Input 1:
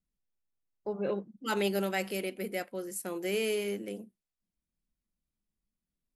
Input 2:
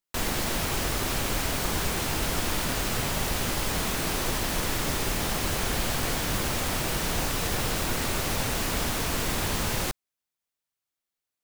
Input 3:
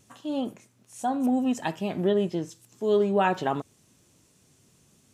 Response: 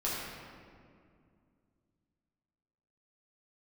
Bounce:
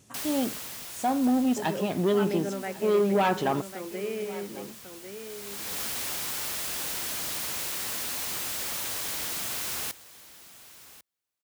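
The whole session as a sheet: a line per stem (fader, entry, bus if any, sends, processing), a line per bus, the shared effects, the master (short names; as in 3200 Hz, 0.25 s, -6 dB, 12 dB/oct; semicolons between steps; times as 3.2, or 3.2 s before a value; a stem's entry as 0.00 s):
-2.0 dB, 0.70 s, no send, echo send -8.5 dB, treble ducked by the level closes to 1900 Hz
0.0 dB, 0.00 s, no send, echo send -17.5 dB, wrapped overs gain 28 dB; auto duck -18 dB, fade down 1.95 s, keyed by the third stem
+2.5 dB, 0.00 s, no send, echo send -20 dB, soft clip -20 dBFS, distortion -14 dB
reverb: off
echo: echo 1.097 s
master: HPF 46 Hz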